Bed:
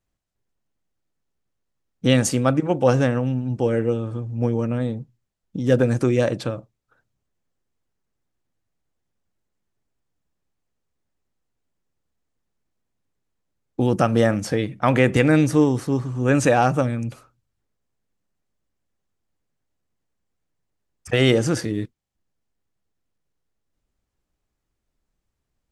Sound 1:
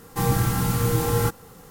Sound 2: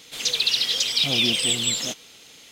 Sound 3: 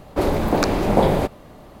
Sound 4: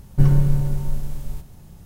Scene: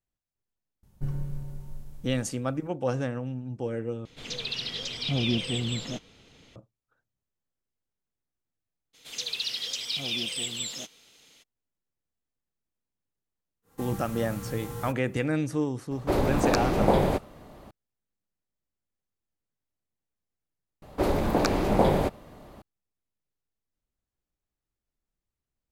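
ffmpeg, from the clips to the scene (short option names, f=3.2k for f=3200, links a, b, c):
-filter_complex "[2:a]asplit=2[a][b];[3:a]asplit=2[c][d];[0:a]volume=-11dB[e];[a]aemphasis=mode=reproduction:type=riaa[f];[1:a]equalizer=f=4.9k:t=o:w=0.21:g=-3.5[g];[e]asplit=3[h][i][j];[h]atrim=end=4.054[k];[f]atrim=end=2.51,asetpts=PTS-STARTPTS,volume=-5.5dB[l];[i]atrim=start=6.556:end=20.824[m];[d]atrim=end=1.8,asetpts=PTS-STARTPTS,volume=-5dB[n];[j]atrim=start=22.616[o];[4:a]atrim=end=1.85,asetpts=PTS-STARTPTS,volume=-16.5dB,afade=t=in:d=0.004:c=hsin,afade=t=out:st=1.846:d=0.004:c=hsin,adelay=830[p];[b]atrim=end=2.51,asetpts=PTS-STARTPTS,volume=-10dB,afade=t=in:d=0.02,afade=t=out:st=2.49:d=0.02,adelay=8930[q];[g]atrim=end=1.7,asetpts=PTS-STARTPTS,volume=-15.5dB,afade=t=in:d=0.1,afade=t=out:st=1.6:d=0.1,adelay=13620[r];[c]atrim=end=1.8,asetpts=PTS-STARTPTS,volume=-5dB,afade=t=in:d=0.004:c=hsin,afade=t=out:st=1.796:d=0.004:c=hsin,adelay=15910[s];[k][l]acrossfade=d=0.004:c1=hsin:c2=hsin[t];[t][m]acrossfade=d=0.004:c1=hsin:c2=hsin[u];[u][n]acrossfade=d=0.004:c1=hsin:c2=hsin[v];[v][o]acrossfade=d=0.004:c1=hsin:c2=hsin[w];[w][p][q][r][s]amix=inputs=5:normalize=0"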